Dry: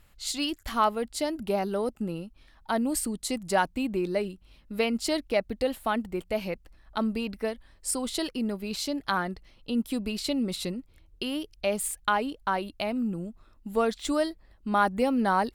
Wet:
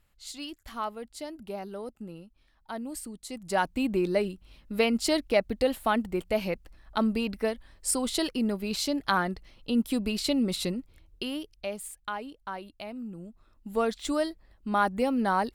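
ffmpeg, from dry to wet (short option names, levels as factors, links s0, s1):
-af "volume=3.16,afade=t=in:st=3.3:d=0.57:silence=0.266073,afade=t=out:st=10.77:d=1.04:silence=0.266073,afade=t=in:st=13.1:d=0.72:silence=0.398107"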